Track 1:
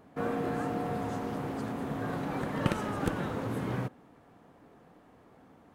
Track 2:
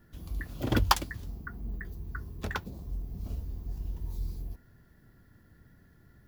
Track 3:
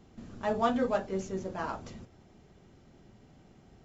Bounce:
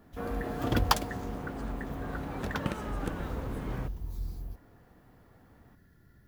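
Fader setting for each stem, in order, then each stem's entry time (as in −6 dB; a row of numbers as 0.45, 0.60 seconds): −4.5, −1.5, −15.5 decibels; 0.00, 0.00, 0.00 seconds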